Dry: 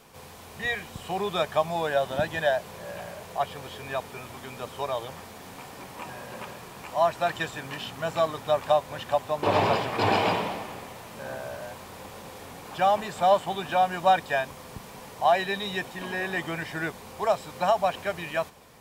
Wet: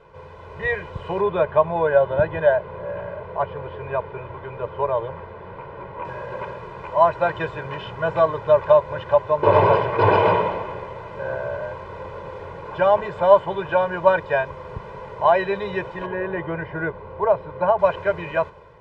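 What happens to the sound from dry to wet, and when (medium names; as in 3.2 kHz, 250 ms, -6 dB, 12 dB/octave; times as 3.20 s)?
1.21–6.05 s: distance through air 260 m
16.06–17.79 s: tape spacing loss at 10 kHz 27 dB
whole clip: comb 2 ms, depth 92%; level rider gain up to 3.5 dB; low-pass 1.6 kHz 12 dB/octave; trim +2.5 dB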